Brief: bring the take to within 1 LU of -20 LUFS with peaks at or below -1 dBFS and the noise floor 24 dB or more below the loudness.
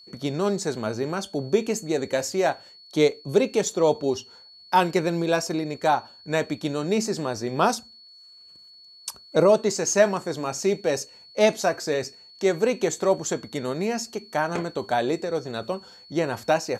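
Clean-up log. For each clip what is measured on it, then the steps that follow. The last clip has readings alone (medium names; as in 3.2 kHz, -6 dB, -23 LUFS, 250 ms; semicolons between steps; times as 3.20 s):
steady tone 4.4 kHz; tone level -47 dBFS; loudness -25.0 LUFS; peak level -7.0 dBFS; loudness target -20.0 LUFS
-> band-stop 4.4 kHz, Q 30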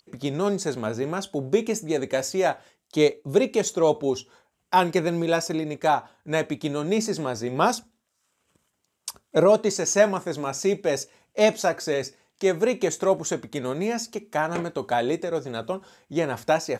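steady tone not found; loudness -25.0 LUFS; peak level -7.0 dBFS; loudness target -20.0 LUFS
-> trim +5 dB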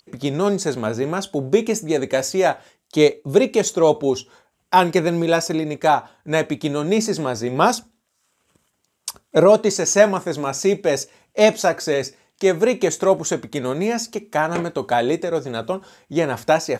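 loudness -20.0 LUFS; peak level -2.0 dBFS; noise floor -71 dBFS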